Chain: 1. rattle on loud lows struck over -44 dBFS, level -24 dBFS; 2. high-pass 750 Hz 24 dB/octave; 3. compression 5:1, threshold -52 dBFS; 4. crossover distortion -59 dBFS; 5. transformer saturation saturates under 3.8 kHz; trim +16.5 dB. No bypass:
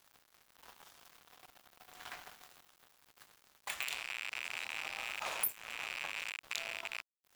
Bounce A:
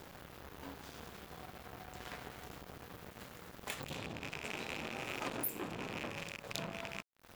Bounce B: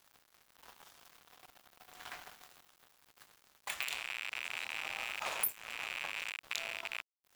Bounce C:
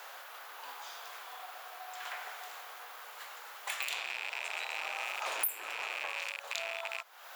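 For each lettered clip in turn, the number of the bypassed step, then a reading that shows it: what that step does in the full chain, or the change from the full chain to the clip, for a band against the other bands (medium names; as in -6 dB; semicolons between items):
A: 2, 250 Hz band +23.0 dB; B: 5, momentary loudness spread change -1 LU; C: 4, distortion -6 dB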